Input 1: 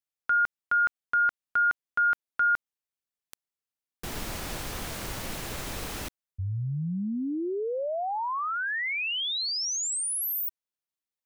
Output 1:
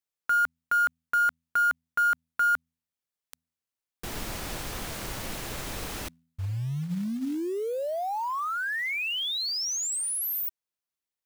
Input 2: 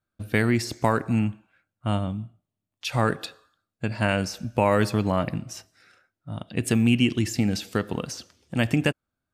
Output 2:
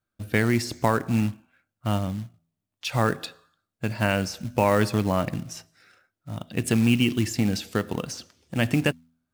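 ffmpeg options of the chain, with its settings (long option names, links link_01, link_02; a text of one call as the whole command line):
ffmpeg -i in.wav -af "bandreject=frequency=82.24:width_type=h:width=4,bandreject=frequency=164.48:width_type=h:width=4,bandreject=frequency=246.72:width_type=h:width=4,acrusher=bits=5:mode=log:mix=0:aa=0.000001" out.wav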